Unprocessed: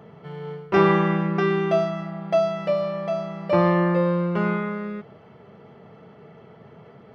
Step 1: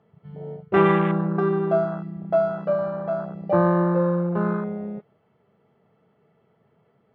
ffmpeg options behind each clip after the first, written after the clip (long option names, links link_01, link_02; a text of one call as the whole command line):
ffmpeg -i in.wav -af "lowpass=5200,afwtdn=0.0562" out.wav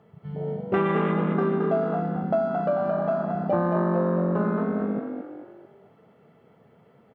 ffmpeg -i in.wav -filter_complex "[0:a]acompressor=threshold=-30dB:ratio=3,asplit=2[link_01][link_02];[link_02]asplit=5[link_03][link_04][link_05][link_06][link_07];[link_03]adelay=221,afreqshift=47,volume=-6dB[link_08];[link_04]adelay=442,afreqshift=94,volume=-13.3dB[link_09];[link_05]adelay=663,afreqshift=141,volume=-20.7dB[link_10];[link_06]adelay=884,afreqshift=188,volume=-28dB[link_11];[link_07]adelay=1105,afreqshift=235,volume=-35.3dB[link_12];[link_08][link_09][link_10][link_11][link_12]amix=inputs=5:normalize=0[link_13];[link_01][link_13]amix=inputs=2:normalize=0,volume=5.5dB" out.wav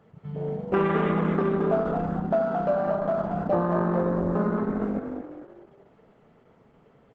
ffmpeg -i in.wav -ar 48000 -c:a libopus -b:a 10k out.opus